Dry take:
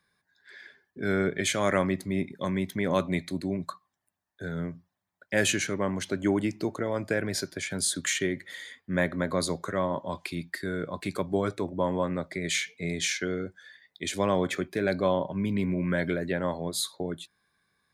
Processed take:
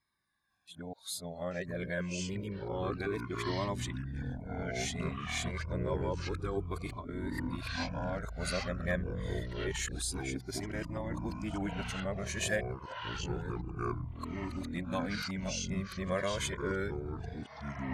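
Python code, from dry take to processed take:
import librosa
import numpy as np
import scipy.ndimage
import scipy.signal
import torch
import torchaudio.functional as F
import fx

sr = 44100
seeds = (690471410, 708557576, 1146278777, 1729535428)

y = np.flip(x).copy()
y = fx.echo_pitch(y, sr, ms=500, semitones=-7, count=3, db_per_echo=-3.0)
y = fx.comb_cascade(y, sr, direction='falling', hz=0.28)
y = F.gain(torch.from_numpy(y), -4.5).numpy()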